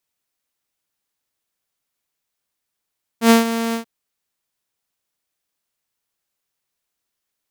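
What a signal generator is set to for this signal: ADSR saw 229 Hz, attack 91 ms, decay 141 ms, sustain -12.5 dB, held 0.53 s, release 105 ms -4.5 dBFS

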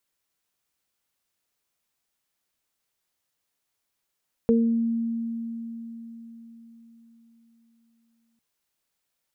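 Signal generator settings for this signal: additive tone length 3.90 s, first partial 230 Hz, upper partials 0.5 dB, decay 4.52 s, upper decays 0.46 s, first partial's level -17 dB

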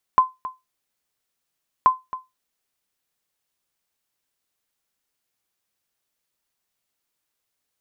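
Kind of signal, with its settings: sonar ping 1.03 kHz, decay 0.20 s, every 1.68 s, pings 2, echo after 0.27 s, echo -16 dB -6 dBFS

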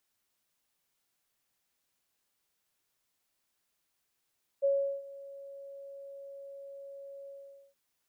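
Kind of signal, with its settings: ADSR sine 555 Hz, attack 24 ms, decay 375 ms, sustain -20.5 dB, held 2.66 s, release 462 ms -23 dBFS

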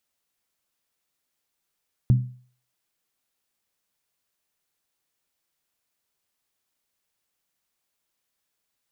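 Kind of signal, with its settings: skin hit, lowest mode 125 Hz, decay 0.45 s, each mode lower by 11 dB, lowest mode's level -11 dB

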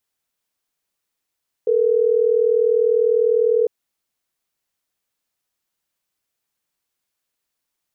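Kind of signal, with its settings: call progress tone ringback tone, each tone -16.5 dBFS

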